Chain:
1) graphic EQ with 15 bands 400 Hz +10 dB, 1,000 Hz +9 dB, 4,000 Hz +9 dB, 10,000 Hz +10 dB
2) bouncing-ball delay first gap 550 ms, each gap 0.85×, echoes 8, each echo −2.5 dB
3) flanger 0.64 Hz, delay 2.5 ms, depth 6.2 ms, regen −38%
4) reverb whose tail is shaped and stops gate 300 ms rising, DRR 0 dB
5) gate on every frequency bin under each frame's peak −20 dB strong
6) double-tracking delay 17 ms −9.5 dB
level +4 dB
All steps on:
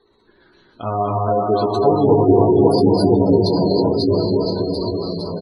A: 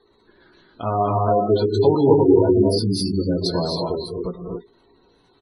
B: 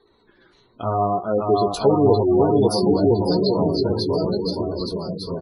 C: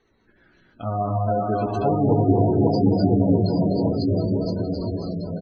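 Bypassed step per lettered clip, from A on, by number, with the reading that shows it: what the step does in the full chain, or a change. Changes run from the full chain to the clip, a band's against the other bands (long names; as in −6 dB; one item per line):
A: 2, change in momentary loudness spread +5 LU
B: 4, 4 kHz band +2.5 dB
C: 1, 4 kHz band −7.5 dB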